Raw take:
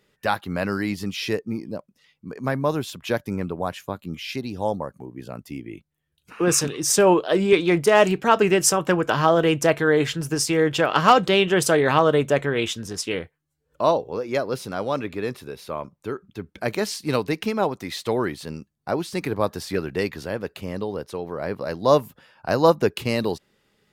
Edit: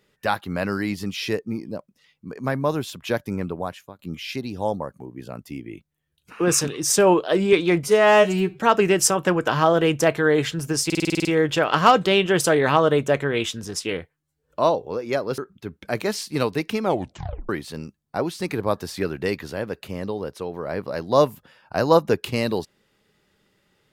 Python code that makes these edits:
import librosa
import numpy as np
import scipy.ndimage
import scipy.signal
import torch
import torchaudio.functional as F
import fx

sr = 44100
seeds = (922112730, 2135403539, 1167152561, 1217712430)

y = fx.edit(x, sr, fx.fade_out_to(start_s=3.54, length_s=0.45, floor_db=-20.5),
    fx.stretch_span(start_s=7.83, length_s=0.38, factor=2.0),
    fx.stutter(start_s=10.47, slice_s=0.05, count=9),
    fx.cut(start_s=14.6, length_s=1.51),
    fx.tape_stop(start_s=17.56, length_s=0.66), tone=tone)